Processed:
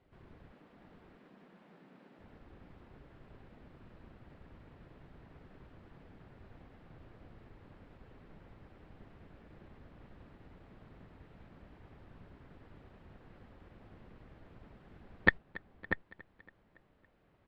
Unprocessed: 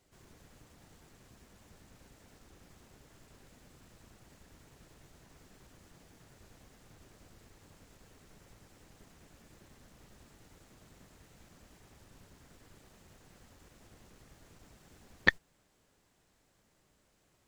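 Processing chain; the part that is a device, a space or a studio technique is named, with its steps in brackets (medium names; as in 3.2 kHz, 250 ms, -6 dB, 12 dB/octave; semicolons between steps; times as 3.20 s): 0.52–2.19 s: steep high-pass 160 Hz 48 dB/octave; shout across a valley (distance through air 440 m; echo from a far wall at 110 m, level -7 dB); feedback delay 280 ms, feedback 55%, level -21 dB; trim +3.5 dB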